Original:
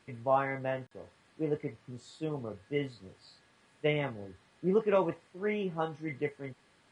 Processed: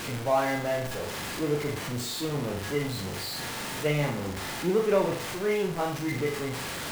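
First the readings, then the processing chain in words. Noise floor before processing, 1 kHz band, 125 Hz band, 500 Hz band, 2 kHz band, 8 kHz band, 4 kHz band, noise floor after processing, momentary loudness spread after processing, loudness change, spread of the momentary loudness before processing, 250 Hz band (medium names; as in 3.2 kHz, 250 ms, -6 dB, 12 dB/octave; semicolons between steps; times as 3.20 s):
-66 dBFS, +4.5 dB, +7.5 dB, +4.5 dB, +7.5 dB, no reading, +14.0 dB, -35 dBFS, 7 LU, +4.5 dB, 19 LU, +5.5 dB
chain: jump at every zero crossing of -30.5 dBFS; flutter echo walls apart 7 m, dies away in 0.44 s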